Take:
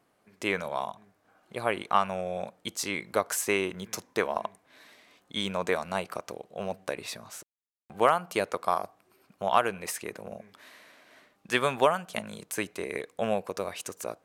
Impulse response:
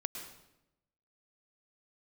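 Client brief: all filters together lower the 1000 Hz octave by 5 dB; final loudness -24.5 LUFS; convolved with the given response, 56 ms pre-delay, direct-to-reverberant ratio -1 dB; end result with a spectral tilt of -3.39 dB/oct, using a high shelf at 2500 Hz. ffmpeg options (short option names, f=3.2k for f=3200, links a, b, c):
-filter_complex "[0:a]equalizer=f=1k:t=o:g=-7.5,highshelf=f=2.5k:g=5,asplit=2[a][b];[1:a]atrim=start_sample=2205,adelay=56[c];[b][c]afir=irnorm=-1:irlink=0,volume=0.5dB[d];[a][d]amix=inputs=2:normalize=0,volume=3.5dB"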